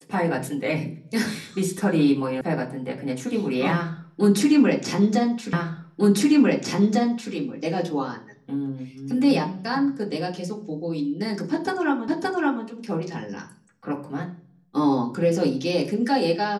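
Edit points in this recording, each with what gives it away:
2.41 sound cut off
5.53 repeat of the last 1.8 s
12.08 repeat of the last 0.57 s

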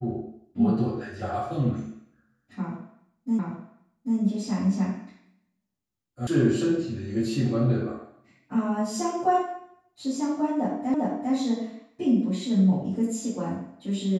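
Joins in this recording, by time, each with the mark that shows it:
3.39 repeat of the last 0.79 s
6.27 sound cut off
10.94 repeat of the last 0.4 s

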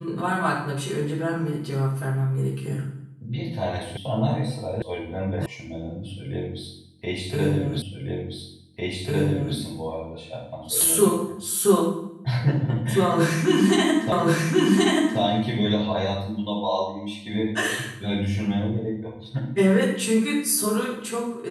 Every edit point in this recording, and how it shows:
3.97 sound cut off
4.82 sound cut off
5.46 sound cut off
7.82 repeat of the last 1.75 s
14.12 repeat of the last 1.08 s

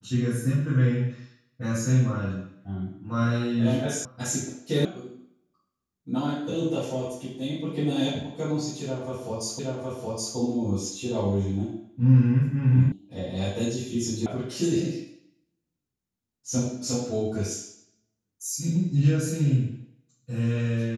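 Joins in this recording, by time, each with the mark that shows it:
4.05 sound cut off
4.85 sound cut off
9.59 repeat of the last 0.77 s
12.92 sound cut off
14.26 sound cut off

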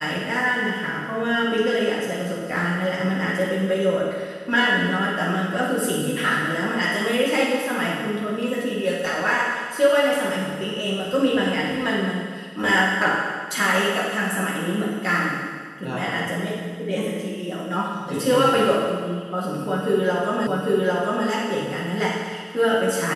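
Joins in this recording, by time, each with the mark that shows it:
20.47 repeat of the last 0.8 s

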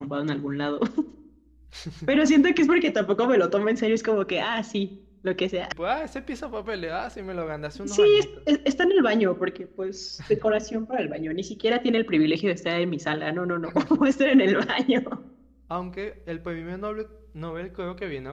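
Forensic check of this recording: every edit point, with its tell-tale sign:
5.72 sound cut off

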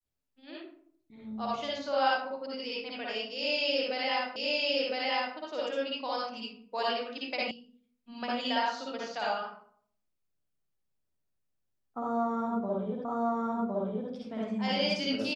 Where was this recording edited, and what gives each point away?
4.36 repeat of the last 1.01 s
7.51 sound cut off
13.05 repeat of the last 1.06 s

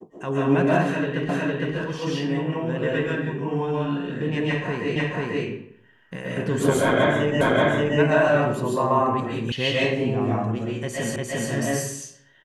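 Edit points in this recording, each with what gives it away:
1.29 repeat of the last 0.46 s
4.96 repeat of the last 0.49 s
7.41 repeat of the last 0.58 s
9.52 sound cut off
11.16 repeat of the last 0.35 s

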